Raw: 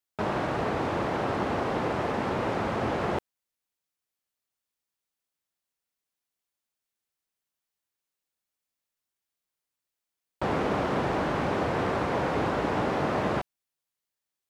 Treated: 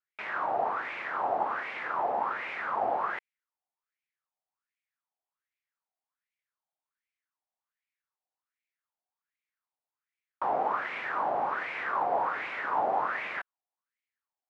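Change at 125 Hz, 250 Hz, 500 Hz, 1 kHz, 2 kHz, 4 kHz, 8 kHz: -24.5 dB, -17.5 dB, -6.5 dB, +1.0 dB, +0.5 dB, -9.0 dB, under -15 dB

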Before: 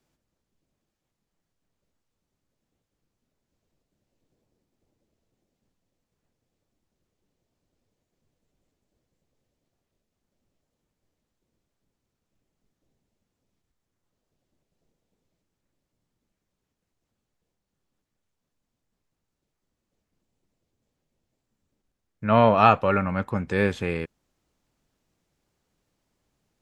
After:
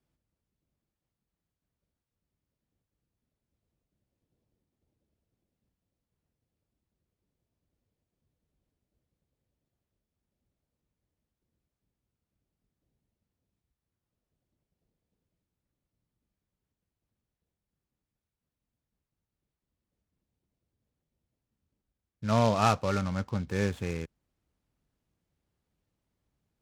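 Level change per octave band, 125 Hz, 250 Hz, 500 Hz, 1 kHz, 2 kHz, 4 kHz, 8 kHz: -2.5 dB, -5.5 dB, -8.0 dB, -9.0 dB, -9.0 dB, -2.0 dB, no reading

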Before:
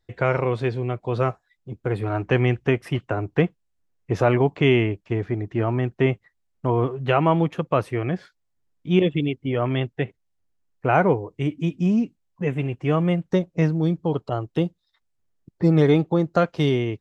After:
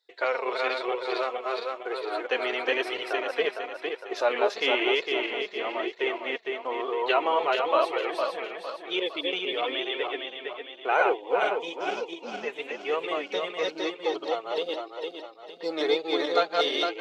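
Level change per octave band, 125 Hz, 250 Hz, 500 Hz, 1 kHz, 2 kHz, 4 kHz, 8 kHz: under -40 dB, -14.0 dB, -3.5 dB, -0.5 dB, +1.5 dB, +7.0 dB, no reading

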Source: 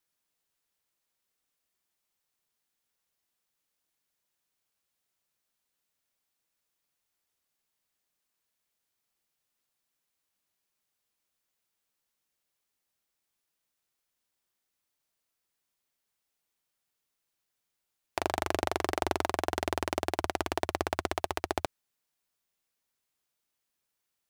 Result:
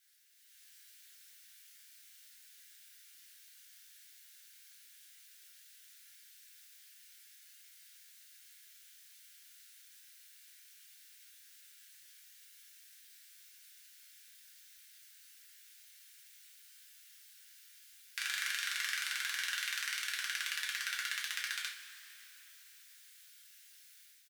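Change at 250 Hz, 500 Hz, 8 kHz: under -40 dB, under -40 dB, +3.5 dB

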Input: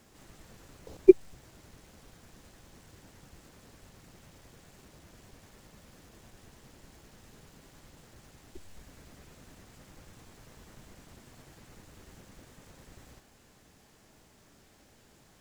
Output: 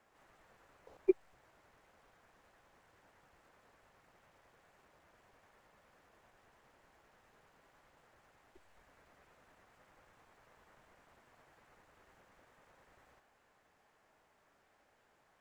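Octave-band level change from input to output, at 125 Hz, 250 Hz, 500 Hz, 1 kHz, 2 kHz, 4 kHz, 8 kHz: -20.0 dB, -14.0 dB, -13.5 dB, -5.0 dB, -7.5 dB, -14.5 dB, -18.5 dB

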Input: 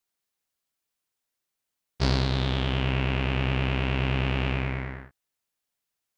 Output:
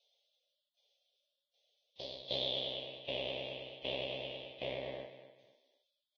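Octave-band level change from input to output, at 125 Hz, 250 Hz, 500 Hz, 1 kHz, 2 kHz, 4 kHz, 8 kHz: -28.5 dB, -21.5 dB, -6.5 dB, -17.0 dB, -16.0 dB, -4.5 dB, no reading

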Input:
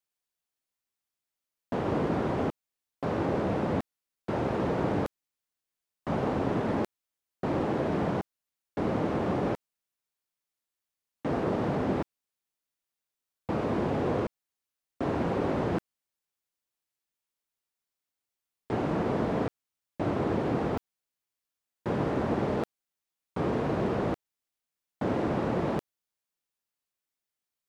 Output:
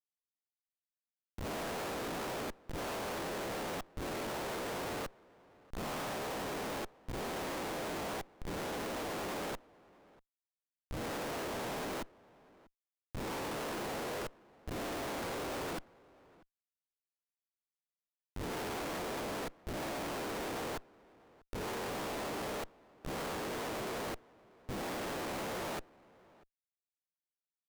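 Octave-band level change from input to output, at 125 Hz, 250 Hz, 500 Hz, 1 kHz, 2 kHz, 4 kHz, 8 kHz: -14.0 dB, -12.5 dB, -9.0 dB, -5.5 dB, -1.0 dB, +5.0 dB, no reading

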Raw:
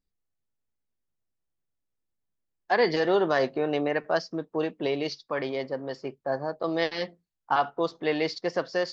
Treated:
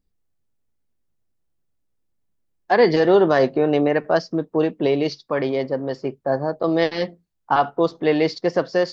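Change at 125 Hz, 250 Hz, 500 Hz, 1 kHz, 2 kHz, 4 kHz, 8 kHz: +10.5 dB, +9.5 dB, +8.0 dB, +6.0 dB, +4.0 dB, +3.5 dB, no reading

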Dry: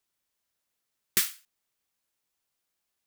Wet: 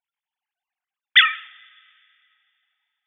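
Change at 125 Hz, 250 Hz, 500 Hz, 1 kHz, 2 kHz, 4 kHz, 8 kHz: under -35 dB, under -35 dB, under -35 dB, +22.0 dB, +22.0 dB, +18.0 dB, under -40 dB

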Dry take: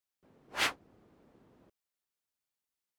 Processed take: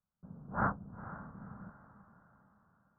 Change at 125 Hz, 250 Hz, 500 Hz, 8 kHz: +18.0 dB, +11.5 dB, +2.5 dB, under -35 dB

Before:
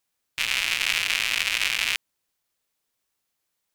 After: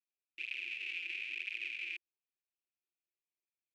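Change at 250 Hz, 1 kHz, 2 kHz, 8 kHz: under -15 dB, under -35 dB, -14.5 dB, under -35 dB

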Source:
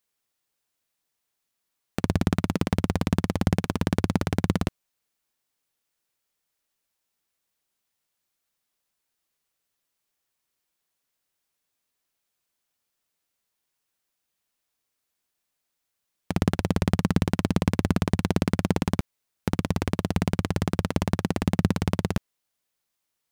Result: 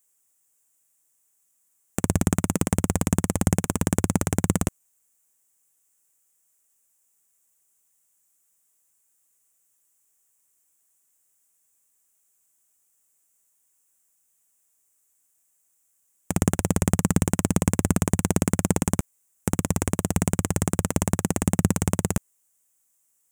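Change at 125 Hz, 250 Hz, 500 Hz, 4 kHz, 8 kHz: +1.0 dB, +1.0 dB, +1.0 dB, -2.5 dB, +14.5 dB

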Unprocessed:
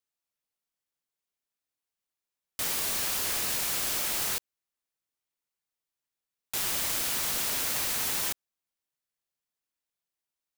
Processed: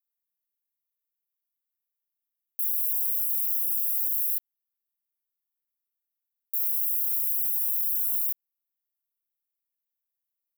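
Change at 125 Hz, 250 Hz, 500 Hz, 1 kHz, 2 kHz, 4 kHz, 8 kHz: under -40 dB, under -40 dB, under -40 dB, under -40 dB, under -40 dB, under -35 dB, -6.5 dB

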